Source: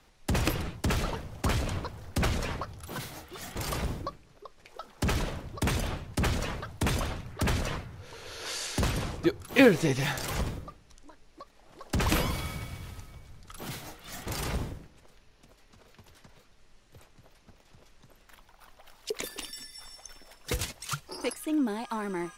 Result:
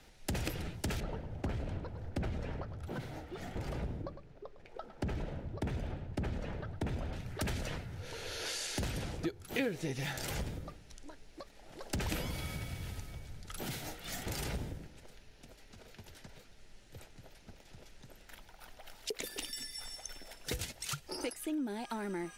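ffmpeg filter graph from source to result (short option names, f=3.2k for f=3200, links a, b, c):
-filter_complex "[0:a]asettb=1/sr,asplit=3[a][b][c];[a]atrim=end=1.004[d];[b]atrim=start=1:end=7.13,asetpts=PTS-STARTPTS,afade=t=in:d=0.004:c=qsin,afade=t=out:st=6.126:d=0.004:c=qsin,lowpass=f=1k:p=1,aecho=1:1:106:0.2,atrim=end_sample=270333[e];[c]atrim=start=7.126[f];[d][e]acrossfade=d=0.004:c1=hsin:c2=qsin[g];[g][f]acrossfade=d=0.004:c1=qsin:c2=hsin,equalizer=f=1.1k:t=o:w=0.28:g=-11.5,acompressor=threshold=-40dB:ratio=3,volume=2.5dB"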